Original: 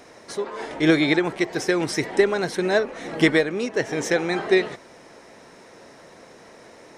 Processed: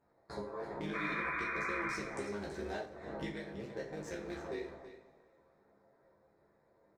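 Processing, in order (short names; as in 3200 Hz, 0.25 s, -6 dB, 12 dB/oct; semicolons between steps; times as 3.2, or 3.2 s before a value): Wiener smoothing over 15 samples; gate with hold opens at -35 dBFS; compressor 10:1, threshold -38 dBFS, peak gain reduction 25.5 dB; AM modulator 110 Hz, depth 90%; chorus voices 4, 0.68 Hz, delay 14 ms, depth 1.1 ms; 0.93–1.95 painted sound noise 970–2500 Hz -44 dBFS; echo 0.328 s -12.5 dB; two-slope reverb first 0.39 s, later 2.4 s, from -22 dB, DRR -0.5 dB; 0.95–2.86 three-band squash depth 40%; gain +2.5 dB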